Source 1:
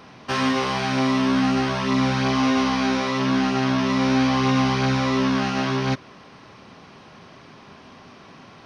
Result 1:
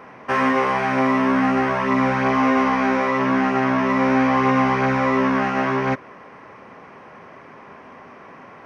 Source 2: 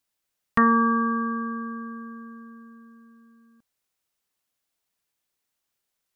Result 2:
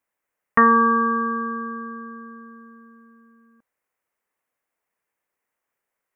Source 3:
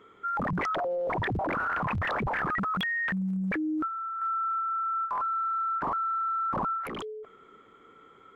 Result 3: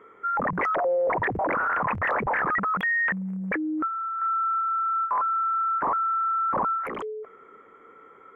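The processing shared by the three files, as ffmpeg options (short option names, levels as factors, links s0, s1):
-af "equalizer=f=250:t=o:w=1:g=3,equalizer=f=500:t=o:w=1:g=9,equalizer=f=1000:t=o:w=1:g=7,equalizer=f=2000:t=o:w=1:g=11,equalizer=f=4000:t=o:w=1:g=-12,volume=0.596"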